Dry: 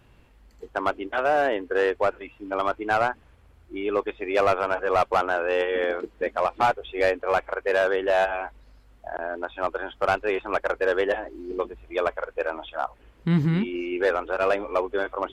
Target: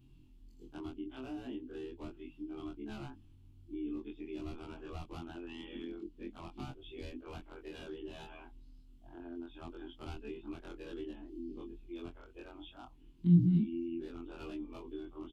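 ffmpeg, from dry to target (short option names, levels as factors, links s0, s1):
-filter_complex "[0:a]afftfilt=real='re':imag='-im':win_size=2048:overlap=0.75,firequalizer=gain_entry='entry(210,0);entry(320,3);entry(510,-27);entry(830,-17);entry(1800,-23);entry(2900,-6);entry(6000,-7)':delay=0.05:min_phase=1,acrossover=split=270[s0][s1];[s1]acompressor=threshold=0.00501:ratio=10[s2];[s0][s2]amix=inputs=2:normalize=0"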